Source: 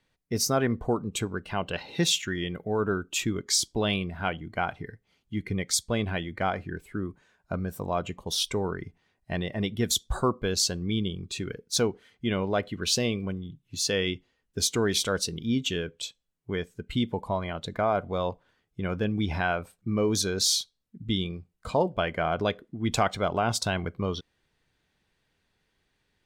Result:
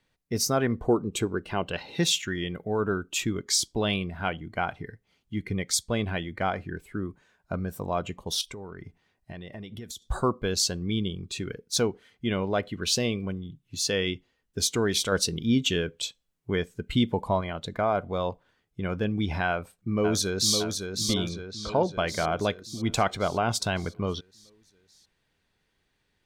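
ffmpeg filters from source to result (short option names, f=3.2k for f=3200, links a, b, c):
-filter_complex "[0:a]asettb=1/sr,asplit=3[a][b][c];[a]atrim=end=0.834[d];[b]atrim=start=0.83:end=1.63,asetpts=PTS-STARTPTS,afade=t=in:d=0.004:c=qsin,afade=t=out:st=0.796:d=0.004:c=qsin,equalizer=f=360:t=o:w=0.77:g=6.5[e];[c]atrim=start=1.626[f];[d][e]acrossfade=d=0.004:c1=hsin:c2=qsin[g];[g][f]acrossfade=d=0.004:c1=qsin:c2=hsin,asettb=1/sr,asplit=3[h][i][j];[h]atrim=end=8.414[k];[i]atrim=start=8.41:end=10.02,asetpts=PTS-STARTPTS,afade=t=in:d=0.004:c=qsin,afade=t=out:st=1.606:d=0.004:c=qsin,acompressor=threshold=-36dB:ratio=10:attack=3.2:release=140:knee=1:detection=peak[l];[j]atrim=start=10.016[m];[k][l]acrossfade=d=0.004:c1=hsin:c2=qsin[n];[n][m]acrossfade=d=0.004:c1=qsin:c2=hsin,asplit=2[o][p];[p]afade=t=in:st=19.48:d=0.01,afade=t=out:st=20.57:d=0.01,aecho=0:1:560|1120|1680|2240|2800|3360|3920|4480:0.530884|0.318531|0.191118|0.114671|0.0688026|0.0412816|0.0247689|0.0148614[q];[o][q]amix=inputs=2:normalize=0,asplit=3[r][s][t];[r]afade=t=out:st=21.28:d=0.02[u];[s]lowpass=4.2k,afade=t=in:st=21.28:d=0.02,afade=t=out:st=21.96:d=0.02[v];[t]afade=t=in:st=21.96:d=0.02[w];[u][v][w]amix=inputs=3:normalize=0,asplit=3[x][y][z];[x]atrim=end=15.122[aa];[y]atrim=start=15.118:end=17.412,asetpts=PTS-STARTPTS,volume=3.5dB[ab];[z]atrim=start=17.408[ac];[aa][ab]acrossfade=d=0.004:c1=hsin:c2=hsin[ad];[ad][ac]acrossfade=d=0.004:c1=hsin:c2=hsin"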